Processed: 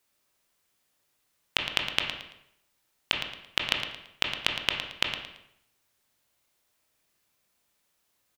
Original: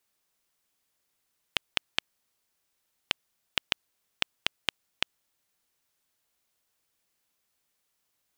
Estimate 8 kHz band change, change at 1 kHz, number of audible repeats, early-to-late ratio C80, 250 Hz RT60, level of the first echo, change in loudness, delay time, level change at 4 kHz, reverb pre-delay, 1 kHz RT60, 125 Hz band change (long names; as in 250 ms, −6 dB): +3.0 dB, +5.0 dB, 2, 6.0 dB, 0.75 s, −9.5 dB, +4.0 dB, 112 ms, +4.0 dB, 17 ms, 0.75 s, +6.5 dB